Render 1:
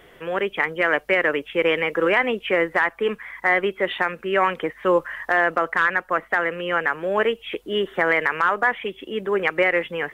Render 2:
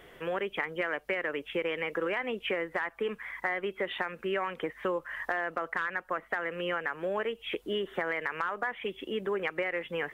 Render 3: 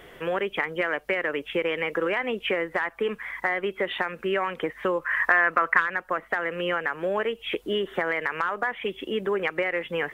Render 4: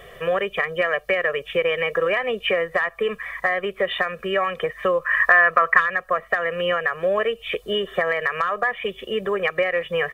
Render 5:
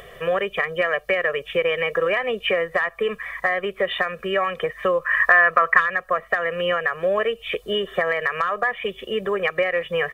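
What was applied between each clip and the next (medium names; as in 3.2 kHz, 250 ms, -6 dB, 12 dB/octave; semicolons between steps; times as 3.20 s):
compression, threshold -25 dBFS, peak gain reduction 11 dB; trim -3.5 dB
time-frequency box 5.02–5.80 s, 930–2700 Hz +8 dB; trim +5.5 dB
comb 1.7 ms, depth 94%; trim +1.5 dB
upward compressor, threshold -42 dBFS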